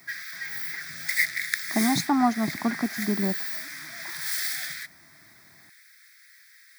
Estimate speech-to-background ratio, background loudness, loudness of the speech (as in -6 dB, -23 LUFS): 3.0 dB, -29.5 LUFS, -26.5 LUFS